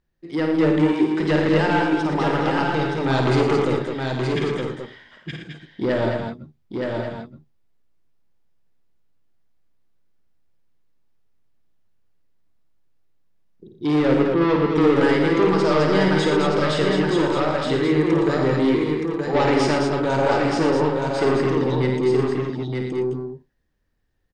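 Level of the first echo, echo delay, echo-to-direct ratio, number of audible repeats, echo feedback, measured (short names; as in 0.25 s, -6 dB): -6.5 dB, 53 ms, 1.5 dB, 9, no steady repeat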